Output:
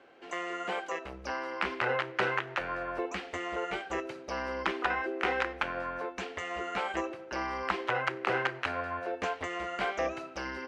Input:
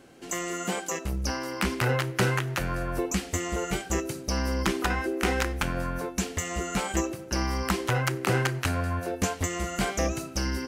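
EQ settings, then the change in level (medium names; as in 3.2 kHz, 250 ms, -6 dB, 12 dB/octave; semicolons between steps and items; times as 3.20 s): distance through air 73 m; three-band isolator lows -20 dB, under 390 Hz, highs -18 dB, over 3.6 kHz; 0.0 dB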